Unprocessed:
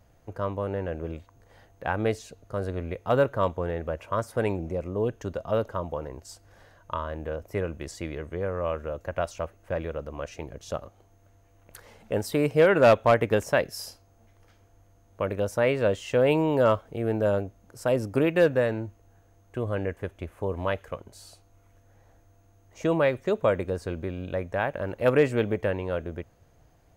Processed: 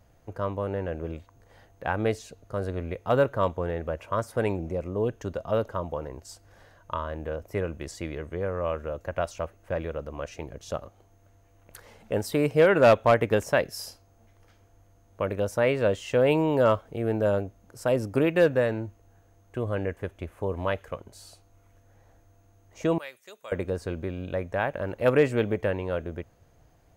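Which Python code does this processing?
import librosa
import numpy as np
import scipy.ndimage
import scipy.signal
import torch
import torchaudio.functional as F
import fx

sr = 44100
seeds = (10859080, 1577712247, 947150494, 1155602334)

y = fx.differentiator(x, sr, at=(22.98, 23.52))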